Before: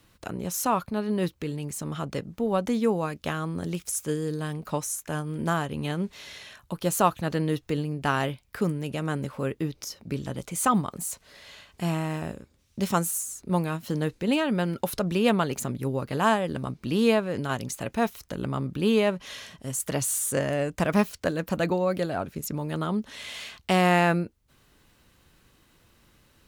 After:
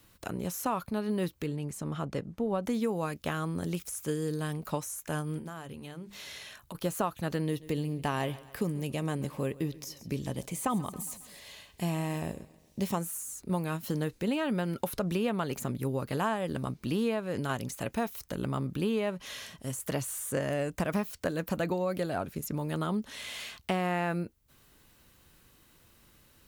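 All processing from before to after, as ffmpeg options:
-filter_complex "[0:a]asettb=1/sr,asplit=3[s0][s1][s2];[s0]atrim=end=1.464[s3];[s1]atrim=start=1.46:end=2.63,asetpts=PTS-STARTPTS,afade=t=in:d=0.004:c=qsin,afade=t=out:st=1.166:d=0.004:c=qsin,lowpass=12000,highshelf=f=2700:g=-8.5[s4];[s2]atrim=start=2.626[s5];[s3][s4]acrossfade=d=0.004:c1=hsin:c2=qsin[s6];[s6][s5]acrossfade=d=0.004:c1=qsin:c2=hsin,asettb=1/sr,asplit=3[s7][s8][s9];[s7]atrim=end=5.384[s10];[s8]atrim=start=5.38:end=6.75,asetpts=PTS-STARTPTS,afade=t=in:d=0.004:c=qsin,afade=t=out:st=1.366:d=0.004:c=qsin,acompressor=threshold=0.0178:ratio=16:attack=3.2:release=140:knee=1:detection=peak,bandreject=f=50:t=h:w=6,bandreject=f=100:t=h:w=6,bandreject=f=150:t=h:w=6,bandreject=f=200:t=h:w=6,bandreject=f=250:t=h:w=6,bandreject=f=300:t=h:w=6,bandreject=f=350:t=h:w=6[s11];[s9]atrim=start=6.746[s12];[s10][s11]acrossfade=d=0.004:c1=hsin:c2=qsin[s13];[s13][s12]acrossfade=d=0.004:c1=qsin:c2=hsin,asettb=1/sr,asplit=3[s14][s15][s16];[s14]atrim=end=7.464[s17];[s15]atrim=start=7.46:end=13.01,asetpts=PTS-STARTPTS,afade=t=in:d=0.004:c=qsin,afade=t=out:st=5.546:d=0.004:c=qsin,equalizer=f=1400:w=5.7:g=-11.5,aecho=1:1:136|272|408|544:0.0891|0.0463|0.0241|0.0125,atrim=end_sample=244755[s18];[s16]atrim=start=13.006[s19];[s17][s18]acrossfade=d=0.004:c1=hsin:c2=qsin[s20];[s20][s19]acrossfade=d=0.004:c1=qsin:c2=hsin,acrossover=split=2800[s21][s22];[s22]acompressor=threshold=0.0112:ratio=4:attack=1:release=60[s23];[s21][s23]amix=inputs=2:normalize=0,highshelf=f=9900:g=10.5,acompressor=threshold=0.0631:ratio=6,volume=0.794"

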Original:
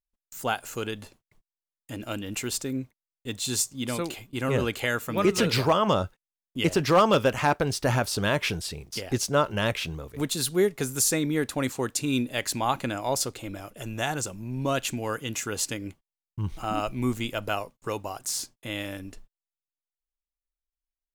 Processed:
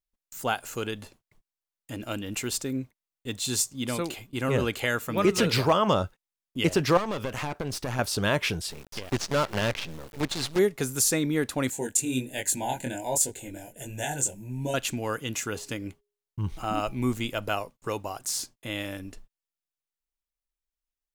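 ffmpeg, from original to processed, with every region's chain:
-filter_complex "[0:a]asettb=1/sr,asplit=3[s0][s1][s2];[s0]atrim=end=6.974[s3];[s1]atrim=start=6.97:end=7.99,asetpts=PTS-STARTPTS,afade=t=in:d=0.004:c=qsin,afade=t=out:st=1.016:d=0.004:c=qsin,acompressor=threshold=0.0501:ratio=4:attack=3.2:release=140:knee=1:detection=peak,aeval=exprs='clip(val(0),-1,0.0178)':c=same[s4];[s2]atrim=start=7.986[s5];[s3][s4]acrossfade=d=0.004:c1=hsin:c2=qsin[s6];[s6][s5]acrossfade=d=0.004:c1=qsin:c2=hsin,asettb=1/sr,asplit=3[s7][s8][s9];[s7]atrim=end=8.704[s10];[s8]atrim=start=8.7:end=10.59,asetpts=PTS-STARTPTS,afade=t=in:d=0.004:c=qsin,afade=t=out:st=1.886:d=0.004:c=qsin,acrusher=bits=5:dc=4:mix=0:aa=0.000001,acrossover=split=6400[s11][s12];[s12]acompressor=threshold=0.00501:ratio=4:attack=1:release=60[s13];[s11][s13]amix=inputs=2:normalize=0,volume=9.44,asoftclip=hard,volume=0.106[s14];[s9]atrim=start=10.586[s15];[s10][s14]acrossfade=d=0.004:c1=hsin:c2=qsin[s16];[s16][s15]acrossfade=d=0.004:c1=qsin:c2=hsin,asettb=1/sr,asplit=3[s17][s18][s19];[s17]atrim=end=11.704[s20];[s18]atrim=start=11.7:end=14.74,asetpts=PTS-STARTPTS,afade=t=in:d=0.004:c=qsin,afade=t=out:st=3.036:d=0.004:c=qsin,asuperstop=centerf=1200:order=12:qfactor=2.5,highshelf=f=6100:t=q:w=3:g=6,flanger=delay=19.5:depth=4.7:speed=1.3[s21];[s19]atrim=start=14.736[s22];[s20][s21]acrossfade=d=0.004:c1=hsin:c2=qsin[s23];[s23][s22]acrossfade=d=0.004:c1=qsin:c2=hsin,asettb=1/sr,asplit=3[s24][s25][s26];[s24]atrim=end=15.504[s27];[s25]atrim=start=15.5:end=16.99,asetpts=PTS-STARTPTS,afade=t=in:d=0.004:c=qsin,afade=t=out:st=1.486:d=0.004:c=qsin,deesser=0.8,bandreject=f=411.5:t=h:w=4,bandreject=f=823:t=h:w=4[s28];[s26]atrim=start=16.986[s29];[s27][s28]acrossfade=d=0.004:c1=hsin:c2=qsin[s30];[s30][s29]acrossfade=d=0.004:c1=qsin:c2=hsin"

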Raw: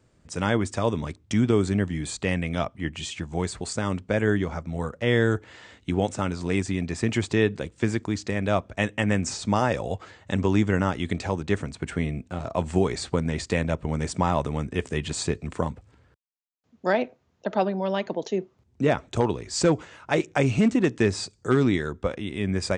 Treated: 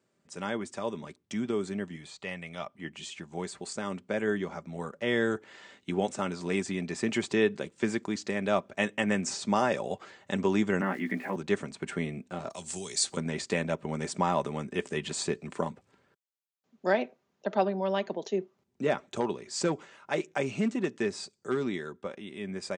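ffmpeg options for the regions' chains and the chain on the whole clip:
-filter_complex "[0:a]asettb=1/sr,asplit=3[s0][s1][s2];[s0]atrim=end=1.964[s3];[s1]atrim=start=1.96:end=2.7,asetpts=PTS-STARTPTS,afade=t=in:d=0.004:c=qsin,afade=t=out:st=0.736:d=0.004:c=qsin,acrossover=split=5400[s4][s5];[s5]acompressor=threshold=0.00282:ratio=4:attack=1:release=60[s6];[s4][s6]amix=inputs=2:normalize=0,equalizer=f=280:t=o:w=1.4:g=-8.5,bandreject=f=1600:w=13[s7];[s2]atrim=start=2.696[s8];[s3][s7]acrossfade=d=0.004:c1=hsin:c2=qsin[s9];[s9][s8]acrossfade=d=0.004:c1=qsin:c2=hsin,asettb=1/sr,asplit=3[s10][s11][s12];[s10]atrim=end=10.814[s13];[s11]atrim=start=10.81:end=11.36,asetpts=PTS-STARTPTS,afade=t=in:d=0.004:c=qsin,afade=t=out:st=0.546:d=0.004:c=qsin,highpass=220,equalizer=f=260:t=q:w=4:g=5,equalizer=f=420:t=q:w=4:g=-7,equalizer=f=600:t=q:w=4:g=-4,equalizer=f=880:t=q:w=4:g=-4,equalizer=f=1300:t=q:w=4:g=-5,equalizer=f=1900:t=q:w=4:g=7,lowpass=f=2200:w=0.5412,lowpass=f=2200:w=1.3066,asplit=2[s14][s15];[s15]adelay=16,volume=0.75[s16];[s14][s16]amix=inputs=2:normalize=0,atrim=end_sample=24255,aeval=exprs='val(0)*gte(abs(val(0)),0.00447)':c=same[s17];[s12]atrim=start=11.356[s18];[s13][s17]acrossfade=d=0.004:c1=hsin:c2=qsin[s19];[s19][s18]acrossfade=d=0.004:c1=qsin:c2=hsin,asettb=1/sr,asplit=3[s20][s21][s22];[s20]atrim=end=12.504[s23];[s21]atrim=start=12.5:end=13.17,asetpts=PTS-STARTPTS,afade=t=in:d=0.004:c=qsin,afade=t=out:st=0.666:d=0.004:c=qsin,acrossover=split=130|3000[s24][s25][s26];[s25]acompressor=threshold=0.00447:ratio=2:attack=3.2:release=140:knee=2.83:detection=peak[s27];[s24][s27][s26]amix=inputs=3:normalize=0,bass=f=250:g=-4,treble=f=4000:g=13[s28];[s22]atrim=start=13.166[s29];[s23][s28]acrossfade=d=0.004:c1=hsin:c2=qsin[s30];[s30][s29]acrossfade=d=0.004:c1=qsin:c2=hsin,highpass=200,aecho=1:1:5.1:0.34,dynaudnorm=f=830:g=11:m=2.24,volume=0.355"

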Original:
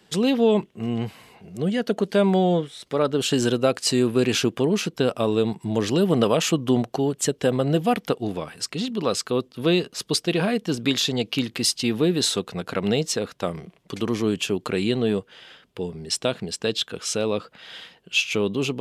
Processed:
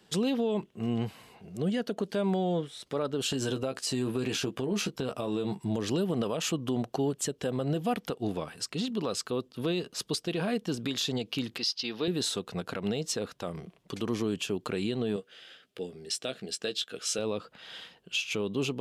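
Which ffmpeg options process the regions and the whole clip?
-filter_complex "[0:a]asettb=1/sr,asplit=3[s0][s1][s2];[s0]atrim=end=3.284[s3];[s1]atrim=start=3.28:end=5.6,asetpts=PTS-STARTPTS,afade=t=in:d=0.004:c=qsin,afade=t=out:st=2.316:d=0.004:c=qsin,asplit=2[s4][s5];[s5]adelay=15,volume=0.473[s6];[s4][s6]amix=inputs=2:normalize=0,atrim=end_sample=102312,acompressor=threshold=0.0891:ratio=4:attack=3.2:release=140:knee=1:detection=peak[s7];[s2]atrim=start=5.596[s8];[s3][s7]acrossfade=d=0.004:c1=hsin:c2=qsin[s9];[s9][s8]acrossfade=d=0.004:c1=qsin:c2=hsin,asettb=1/sr,asplit=3[s10][s11][s12];[s10]atrim=end=11.584[s13];[s11]atrim=start=11.58:end=12.08,asetpts=PTS-STARTPTS,afade=t=in:d=0.004:c=qsin,afade=t=out:st=0.496:d=0.004:c=qsin,highpass=f=610:p=1,highshelf=f=6500:t=q:w=3:g=-9[s14];[s12]atrim=start=12.076[s15];[s13][s14]acrossfade=d=0.004:c1=hsin:c2=qsin[s16];[s16][s15]acrossfade=d=0.004:c1=qsin:c2=hsin,asettb=1/sr,asplit=3[s17][s18][s19];[s17]atrim=end=15.164[s20];[s18]atrim=start=15.16:end=17.19,asetpts=PTS-STARTPTS,afade=t=in:d=0.004:c=qsin,afade=t=out:st=2.026:d=0.004:c=qsin,highpass=f=390:p=1,equalizer=f=960:t=o:w=0.33:g=-15,asplit=2[s21][s22];[s22]adelay=15,volume=0.335[s23];[s21][s23]amix=inputs=2:normalize=0,atrim=end_sample=89523[s24];[s19]atrim=start=17.186[s25];[s20][s24]acrossfade=d=0.004:c1=hsin:c2=qsin[s26];[s26][s25]acrossfade=d=0.004:c1=qsin:c2=hsin,equalizer=f=2100:w=3.4:g=-3,alimiter=limit=0.15:level=0:latency=1:release=143,volume=0.631"

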